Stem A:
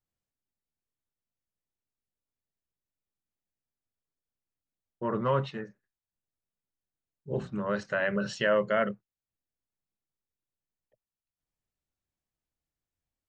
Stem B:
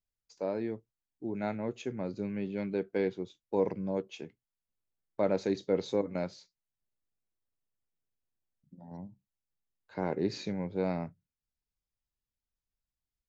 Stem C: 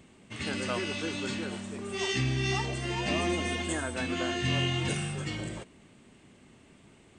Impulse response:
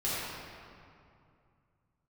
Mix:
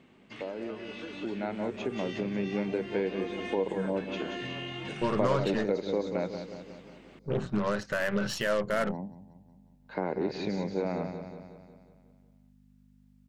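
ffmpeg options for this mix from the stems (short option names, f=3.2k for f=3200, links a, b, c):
-filter_complex "[0:a]alimiter=level_in=2dB:limit=-24dB:level=0:latency=1:release=223,volume=-2dB,aeval=exprs='0.0501*(cos(1*acos(clip(val(0)/0.0501,-1,1)))-cos(1*PI/2))+0.00398*(cos(8*acos(clip(val(0)/0.0501,-1,1)))-cos(8*PI/2))':c=same,volume=0dB[a];[1:a]aeval=exprs='val(0)+0.00126*(sin(2*PI*50*n/s)+sin(2*PI*2*50*n/s)/2+sin(2*PI*3*50*n/s)/3+sin(2*PI*4*50*n/s)/4+sin(2*PI*5*50*n/s)/5)':c=same,volume=2.5dB,asplit=2[b][c];[c]volume=-16dB[d];[2:a]acompressor=threshold=-38dB:ratio=6,volume=-1.5dB[e];[b][e]amix=inputs=2:normalize=0,highpass=190,lowpass=3.5k,acompressor=threshold=-37dB:ratio=2.5,volume=0dB[f];[d]aecho=0:1:182|364|546|728|910|1092|1274|1456:1|0.55|0.303|0.166|0.0915|0.0503|0.0277|0.0152[g];[a][f][g]amix=inputs=3:normalize=0,dynaudnorm=f=540:g=5:m=6.5dB"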